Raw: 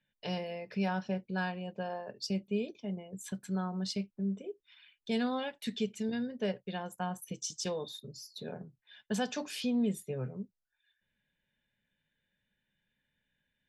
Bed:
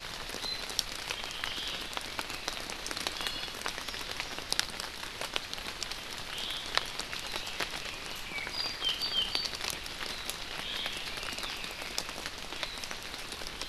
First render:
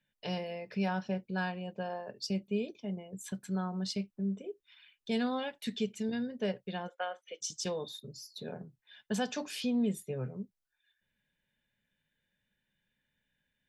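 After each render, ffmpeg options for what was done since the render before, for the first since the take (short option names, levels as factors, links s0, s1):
-filter_complex "[0:a]asplit=3[s0][s1][s2];[s0]afade=t=out:st=6.87:d=0.02[s3];[s1]highpass=f=460:w=0.5412,highpass=f=460:w=1.3066,equalizer=f=540:t=q:w=4:g=9,equalizer=f=970:t=q:w=4:g=-9,equalizer=f=1400:t=q:w=4:g=6,equalizer=f=2100:t=q:w=4:g=8,equalizer=f=3300:t=q:w=4:g=8,lowpass=f=3800:w=0.5412,lowpass=f=3800:w=1.3066,afade=t=in:st=6.87:d=0.02,afade=t=out:st=7.4:d=0.02[s4];[s2]afade=t=in:st=7.4:d=0.02[s5];[s3][s4][s5]amix=inputs=3:normalize=0"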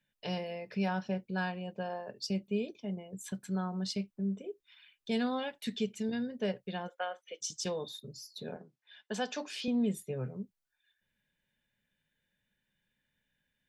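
-filter_complex "[0:a]asettb=1/sr,asplit=3[s0][s1][s2];[s0]atrim=end=8.564[s3];[s1]atrim=start=8.56:end=9.68,asetpts=PTS-STARTPTS,afade=t=in:d=0.004:c=qsin,afade=t=out:st=1.116:d=0.004:c=qsin,highpass=290,lowpass=7000[s4];[s2]atrim=start=9.676[s5];[s3][s4]acrossfade=d=0.004:c1=hsin:c2=qsin[s6];[s6][s5]acrossfade=d=0.004:c1=qsin:c2=hsin"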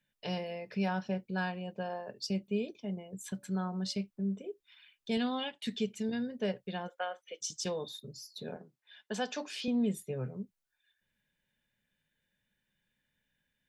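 -filter_complex "[0:a]asettb=1/sr,asplit=3[s0][s1][s2];[s0]atrim=end=3.194[s3];[s1]atrim=start=3.19:end=4.01,asetpts=PTS-STARTPTS,afade=t=in:d=0.004:c=qsin,afade=t=out:st=0.816:d=0.004:c=qsin,bandreject=f=286:t=h:w=4,bandreject=f=572:t=h:w=4,bandreject=f=858:t=h:w=4,bandreject=f=1144:t=h:w=4[s4];[s2]atrim=start=4.006[s5];[s3][s4]acrossfade=d=0.004:c1=hsin:c2=qsin[s6];[s6][s5]acrossfade=d=0.004:c1=qsin:c2=hsin,asettb=1/sr,asplit=3[s7][s8][s9];[s7]atrim=end=5.174[s10];[s8]atrim=start=5.17:end=5.65,asetpts=PTS-STARTPTS,afade=t=in:d=0.004:c=qsin,afade=t=out:st=0.476:d=0.004:c=qsin,highpass=100,equalizer=f=540:t=q:w=4:g=-4,equalizer=f=1500:t=q:w=4:g=-3,equalizer=f=3100:t=q:w=4:g=9,equalizer=f=5800:t=q:w=4:g=-4,lowpass=f=9400:w=0.5412,lowpass=f=9400:w=1.3066[s11];[s9]atrim=start=5.646[s12];[s10][s11]acrossfade=d=0.004:c1=hsin:c2=qsin[s13];[s13][s12]acrossfade=d=0.004:c1=qsin:c2=hsin"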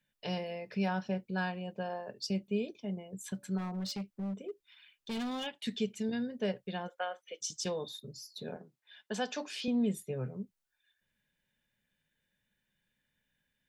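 -filter_complex "[0:a]asplit=3[s0][s1][s2];[s0]afade=t=out:st=3.57:d=0.02[s3];[s1]asoftclip=type=hard:threshold=0.02,afade=t=in:st=3.57:d=0.02,afade=t=out:st=5.45:d=0.02[s4];[s2]afade=t=in:st=5.45:d=0.02[s5];[s3][s4][s5]amix=inputs=3:normalize=0"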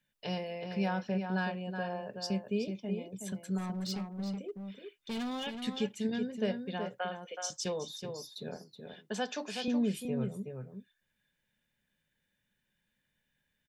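-filter_complex "[0:a]asplit=2[s0][s1];[s1]adelay=373.2,volume=0.501,highshelf=f=4000:g=-8.4[s2];[s0][s2]amix=inputs=2:normalize=0"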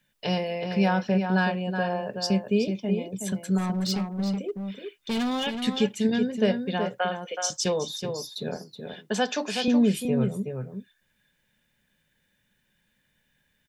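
-af "volume=2.99"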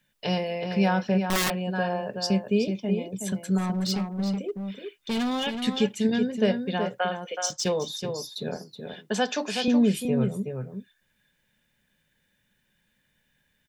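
-filter_complex "[0:a]asettb=1/sr,asplit=3[s0][s1][s2];[s0]atrim=end=1.234[s3];[s1]atrim=start=1.23:end=1.69,asetpts=PTS-STARTPTS,afade=t=in:d=0.004:c=qsin,afade=t=out:st=0.456:d=0.004:c=qsin,aeval=exprs='(mod(8.91*val(0)+1,2)-1)/8.91':c=same[s4];[s2]atrim=start=1.686[s5];[s3][s4]acrossfade=d=0.004:c1=hsin:c2=qsin[s6];[s6][s5]acrossfade=d=0.004:c1=qsin:c2=hsin,asettb=1/sr,asplit=3[s7][s8][s9];[s7]atrim=end=7.464[s10];[s8]atrim=start=7.46:end=7.87,asetpts=PTS-STARTPTS,afade=t=in:d=0.004:c=qsin,afade=t=out:st=0.406:d=0.004:c=qsin,adynamicsmooth=sensitivity=7.5:basefreq=5900[s11];[s9]atrim=start=7.866[s12];[s10][s11]acrossfade=d=0.004:c1=hsin:c2=qsin[s13];[s13][s12]acrossfade=d=0.004:c1=qsin:c2=hsin"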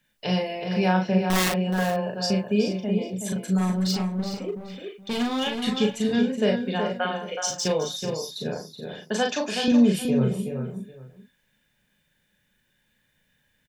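-filter_complex "[0:a]asplit=2[s0][s1];[s1]adelay=38,volume=0.668[s2];[s0][s2]amix=inputs=2:normalize=0,aecho=1:1:422:0.211"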